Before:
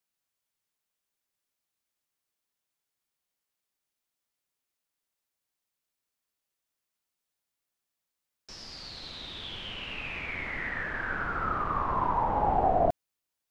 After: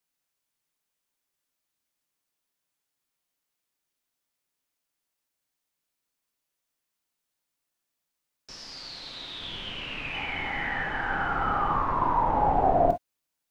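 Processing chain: 8.51–9.41 low shelf 270 Hz -8 dB; 10.13–11.76 small resonant body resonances 810/3000 Hz, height 18 dB, ringing for 65 ms; reverb, pre-delay 3 ms, DRR 5.5 dB; gain +1.5 dB

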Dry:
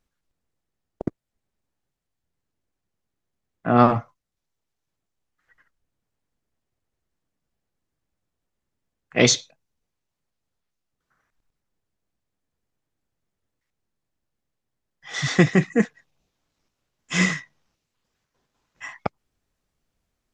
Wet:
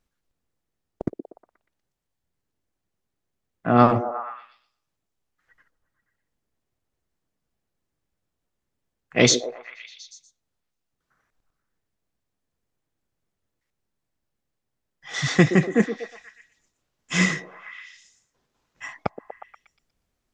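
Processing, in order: delay with a stepping band-pass 0.12 s, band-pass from 370 Hz, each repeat 0.7 oct, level -7 dB

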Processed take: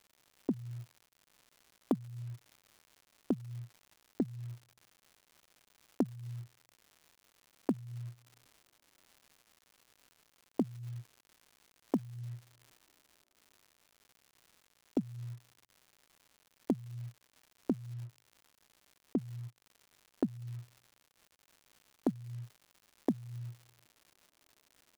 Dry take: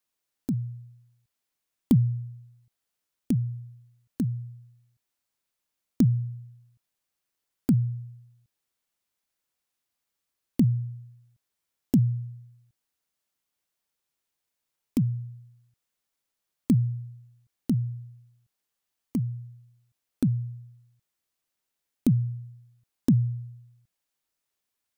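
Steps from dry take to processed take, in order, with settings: HPF 220 Hz 24 dB/oct; gate -59 dBFS, range -43 dB; comb 3.1 ms, depth 45%; reverse; upward compressor, threshold -46 dBFS; reverse; low-pass opened by the level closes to 500 Hz, open at -29.5 dBFS; compressor 6:1, threshold -36 dBFS, peak gain reduction 18.5 dB; crackle 200/s -58 dBFS; transient shaper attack -7 dB, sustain -2 dB; gain +12.5 dB

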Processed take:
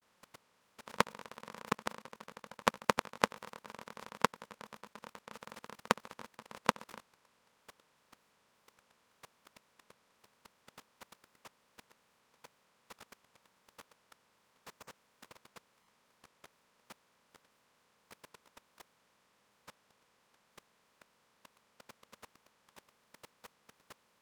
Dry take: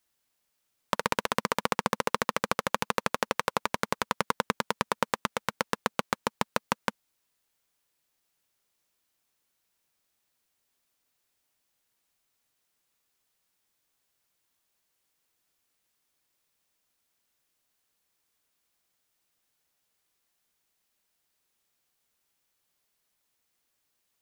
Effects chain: per-bin compression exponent 0.4; grains 0.257 s, grains 9/s, pitch spread up and down by 0 st; level quantiser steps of 24 dB; gain -1 dB

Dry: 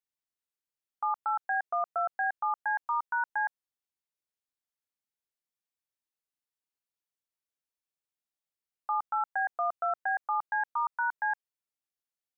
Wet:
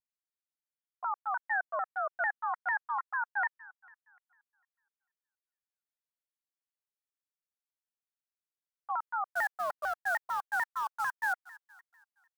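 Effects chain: gate -32 dBFS, range -7 dB; HPF 400 Hz 12 dB/oct; bell 1700 Hz +5 dB 0.3 oct; 9.32–11.33 short-mantissa float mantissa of 2-bit; thin delay 0.235 s, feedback 47%, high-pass 1500 Hz, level -18 dB; shaped vibrato saw down 6.7 Hz, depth 250 cents; gain -3.5 dB

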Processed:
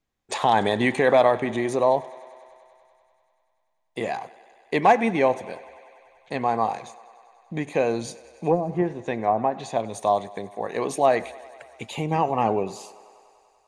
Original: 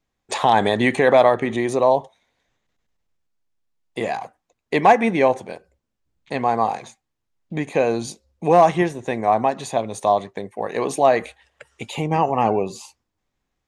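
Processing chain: 8.04–9.8 treble ducked by the level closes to 330 Hz, closed at -9.5 dBFS; thinning echo 97 ms, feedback 81%, high-pass 230 Hz, level -21 dB; gain -3.5 dB

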